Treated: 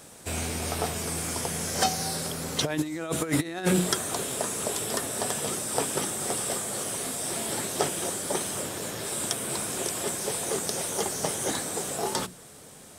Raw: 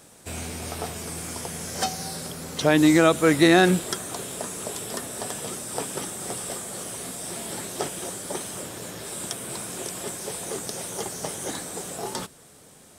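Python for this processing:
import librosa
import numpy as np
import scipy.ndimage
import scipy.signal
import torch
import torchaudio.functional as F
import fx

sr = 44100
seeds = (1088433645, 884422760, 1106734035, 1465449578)

y = fx.hum_notches(x, sr, base_hz=60, count=6)
y = fx.over_compress(y, sr, threshold_db=-23.0, ratio=-0.5)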